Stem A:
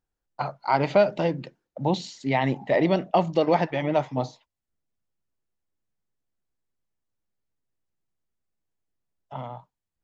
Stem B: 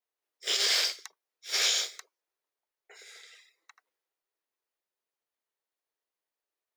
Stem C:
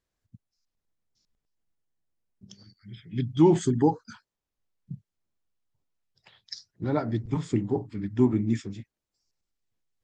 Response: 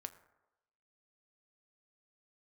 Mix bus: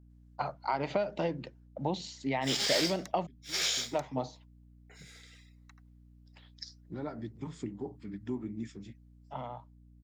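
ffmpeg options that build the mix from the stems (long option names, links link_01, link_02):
-filter_complex "[0:a]acompressor=threshold=-23dB:ratio=6,volume=-4dB,asplit=3[link_01][link_02][link_03];[link_01]atrim=end=3.27,asetpts=PTS-STARTPTS,afade=type=out:start_time=3.266:duration=0.004:curve=hsin[link_04];[link_02]atrim=start=3.27:end=3.93,asetpts=PTS-STARTPTS,volume=0[link_05];[link_03]atrim=start=3.93,asetpts=PTS-STARTPTS,afade=type=in:duration=0.004:curve=hsin[link_06];[link_04][link_05][link_06]concat=n=3:v=0:a=1,asplit=2[link_07][link_08];[1:a]adelay=2000,volume=-4.5dB[link_09];[2:a]acompressor=threshold=-36dB:ratio=2,adelay=100,volume=-4dB[link_10];[link_08]apad=whole_len=446776[link_11];[link_10][link_11]sidechaincompress=threshold=-47dB:ratio=16:attack=24:release=1050[link_12];[link_07][link_09][link_12]amix=inputs=3:normalize=0,highpass=140,aeval=exprs='val(0)+0.00158*(sin(2*PI*60*n/s)+sin(2*PI*2*60*n/s)/2+sin(2*PI*3*60*n/s)/3+sin(2*PI*4*60*n/s)/4+sin(2*PI*5*60*n/s)/5)':channel_layout=same"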